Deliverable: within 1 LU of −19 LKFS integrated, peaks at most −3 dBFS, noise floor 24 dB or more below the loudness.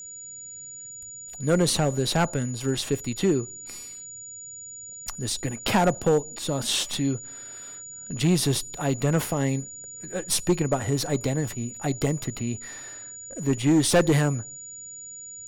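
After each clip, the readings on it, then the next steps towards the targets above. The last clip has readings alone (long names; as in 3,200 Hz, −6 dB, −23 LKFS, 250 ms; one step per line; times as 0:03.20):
share of clipped samples 0.7%; peaks flattened at −14.5 dBFS; interfering tone 6,900 Hz; level of the tone −38 dBFS; integrated loudness −25.5 LKFS; sample peak −14.5 dBFS; target loudness −19.0 LKFS
→ clipped peaks rebuilt −14.5 dBFS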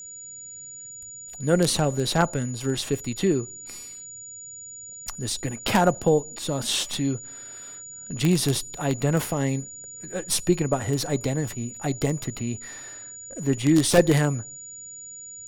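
share of clipped samples 0.0%; interfering tone 6,900 Hz; level of the tone −38 dBFS
→ notch filter 6,900 Hz, Q 30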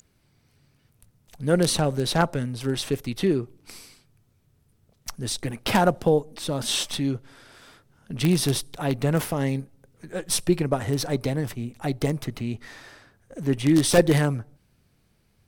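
interfering tone none found; integrated loudness −24.5 LKFS; sample peak −5.5 dBFS; target loudness −19.0 LKFS
→ level +5.5 dB
brickwall limiter −3 dBFS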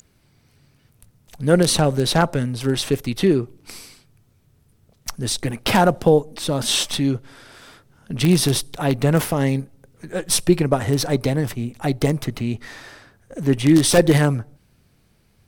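integrated loudness −19.5 LKFS; sample peak −3.0 dBFS; background noise floor −60 dBFS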